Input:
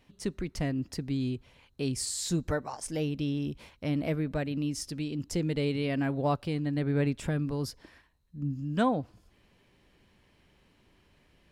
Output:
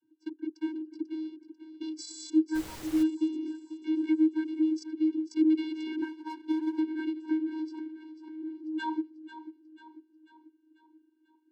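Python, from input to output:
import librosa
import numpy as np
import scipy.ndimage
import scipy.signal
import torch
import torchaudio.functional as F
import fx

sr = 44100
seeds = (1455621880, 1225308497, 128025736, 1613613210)

y = fx.wiener(x, sr, points=41)
y = fx.echo_feedback(y, sr, ms=492, feedback_pct=49, wet_db=-13.0)
y = fx.vocoder(y, sr, bands=32, carrier='square', carrier_hz=314.0)
y = fx.power_curve(y, sr, exponent=1.4, at=(6.02, 6.79))
y = fx.high_shelf(y, sr, hz=2400.0, db=11.5)
y = fx.small_body(y, sr, hz=(470.0, 1700.0), ring_ms=45, db=8)
y = fx.dmg_noise_colour(y, sr, seeds[0], colour='pink', level_db=-46.0, at=(2.54, 3.02), fade=0.02)
y = fx.pre_swell(y, sr, db_per_s=58.0, at=(7.43, 8.48))
y = F.gain(torch.from_numpy(y), 1.5).numpy()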